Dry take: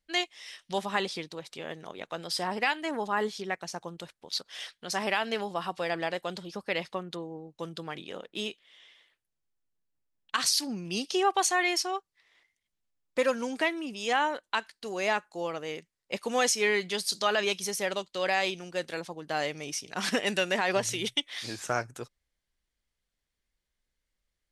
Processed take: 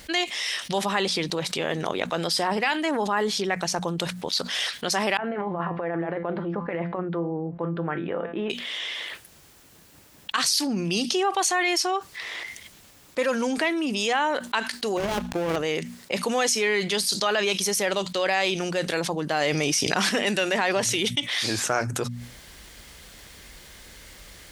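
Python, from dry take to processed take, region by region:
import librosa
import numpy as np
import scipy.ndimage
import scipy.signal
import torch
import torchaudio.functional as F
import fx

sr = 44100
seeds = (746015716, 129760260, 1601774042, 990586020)

y = fx.chain(x, sr, fx.lowpass(hz=1800.0, slope=24),
    fx.over_compress(threshold_db=-35.0, ratio=-0.5),
    fx.comb_fb(f0_hz=170.0, decay_s=0.26, harmonics='all', damping=0.0, mix_pct=70), at=(5.17, 8.5))
y = fx.chain(y, sr, fx.dead_time(dead_ms=0.29),
    fx.tilt_eq(slope=-2.5),
    fx.over_compress(threshold_db=-35.0, ratio=-1.0), at=(14.97, 15.56))
y = fx.dmg_tone(y, sr, hz=4900.0, level_db=-60.0, at=(19.4, 20.07), fade=0.02)
y = fx.env_flatten(y, sr, amount_pct=50, at=(19.4, 20.07), fade=0.02)
y = scipy.signal.sosfilt(scipy.signal.butter(2, 50.0, 'highpass', fs=sr, output='sos'), y)
y = fx.hum_notches(y, sr, base_hz=60, count=4)
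y = fx.env_flatten(y, sr, amount_pct=70)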